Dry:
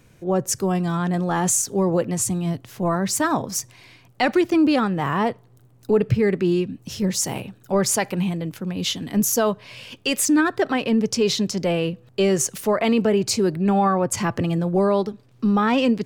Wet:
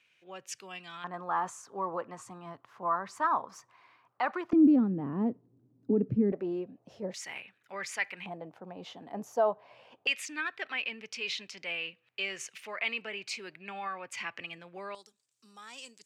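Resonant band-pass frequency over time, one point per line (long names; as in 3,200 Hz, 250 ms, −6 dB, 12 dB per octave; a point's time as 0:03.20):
resonant band-pass, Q 3.3
2,700 Hz
from 0:01.04 1,100 Hz
from 0:04.53 260 Hz
from 0:06.32 650 Hz
from 0:07.14 2,100 Hz
from 0:08.26 760 Hz
from 0:10.07 2,400 Hz
from 0:14.95 7,700 Hz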